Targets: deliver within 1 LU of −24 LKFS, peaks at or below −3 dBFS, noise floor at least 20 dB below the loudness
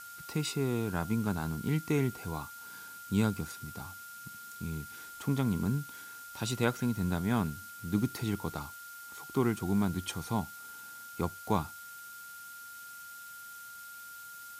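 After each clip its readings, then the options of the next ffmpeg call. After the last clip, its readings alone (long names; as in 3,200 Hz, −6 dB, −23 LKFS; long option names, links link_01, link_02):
interfering tone 1,400 Hz; level of the tone −46 dBFS; background noise floor −47 dBFS; target noise floor −54 dBFS; integrated loudness −34.0 LKFS; sample peak −14.0 dBFS; target loudness −24.0 LKFS
→ -af "bandreject=frequency=1400:width=30"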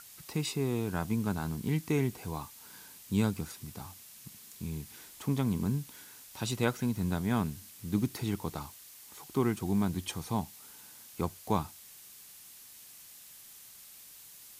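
interfering tone none found; background noise floor −53 dBFS; target noise floor −54 dBFS
→ -af "afftdn=noise_reduction=6:noise_floor=-53"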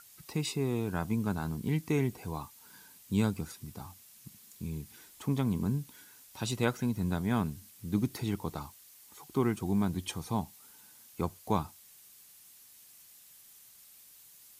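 background noise floor −57 dBFS; integrated loudness −33.5 LKFS; sample peak −14.0 dBFS; target loudness −24.0 LKFS
→ -af "volume=9.5dB"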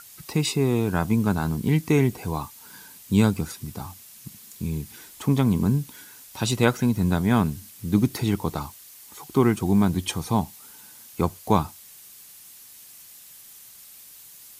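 integrated loudness −24.0 LKFS; sample peak −4.5 dBFS; background noise floor −47 dBFS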